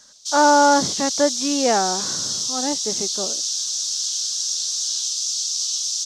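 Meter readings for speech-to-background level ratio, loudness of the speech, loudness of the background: 1.5 dB, −20.5 LKFS, −22.0 LKFS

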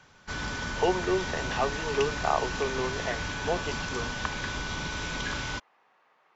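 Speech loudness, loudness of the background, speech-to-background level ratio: −31.5 LKFS, −33.0 LKFS, 1.5 dB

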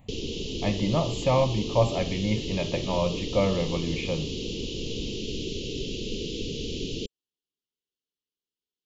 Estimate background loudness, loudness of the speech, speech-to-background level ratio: −33.0 LKFS, −27.5 LKFS, 5.5 dB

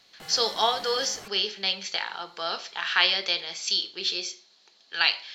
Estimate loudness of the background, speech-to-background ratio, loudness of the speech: −44.0 LKFS, 18.0 dB, −26.0 LKFS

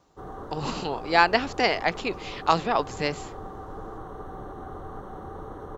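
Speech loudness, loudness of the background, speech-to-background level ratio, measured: −25.5 LKFS, −40.0 LKFS, 14.5 dB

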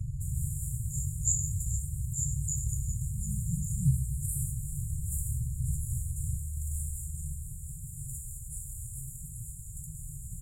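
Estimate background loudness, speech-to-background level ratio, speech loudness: −39.0 LKFS, 5.5 dB, −33.5 LKFS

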